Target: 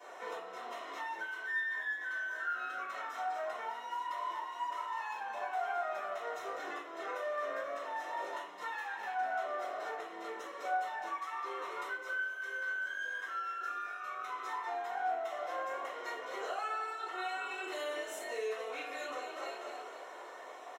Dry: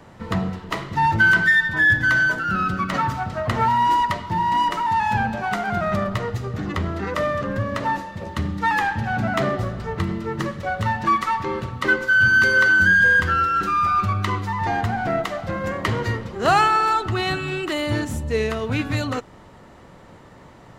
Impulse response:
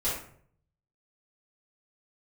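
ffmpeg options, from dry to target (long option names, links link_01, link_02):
-filter_complex "[0:a]asuperstop=centerf=4600:order=8:qfactor=7.3,asplit=6[link_01][link_02][link_03][link_04][link_05][link_06];[link_02]adelay=242,afreqshift=48,volume=-12dB[link_07];[link_03]adelay=484,afreqshift=96,volume=-18.7dB[link_08];[link_04]adelay=726,afreqshift=144,volume=-25.5dB[link_09];[link_05]adelay=968,afreqshift=192,volume=-32.2dB[link_10];[link_06]adelay=1210,afreqshift=240,volume=-39dB[link_11];[link_01][link_07][link_08][link_09][link_10][link_11]amix=inputs=6:normalize=0,acompressor=threshold=-29dB:ratio=6,highpass=frequency=500:width=0.5412,highpass=frequency=500:width=1.3066,aecho=1:1:2.8:0.41,alimiter=level_in=6.5dB:limit=-24dB:level=0:latency=1:release=280,volume=-6.5dB[link_12];[1:a]atrim=start_sample=2205,asetrate=48510,aresample=44100[link_13];[link_12][link_13]afir=irnorm=-1:irlink=0,volume=-7dB"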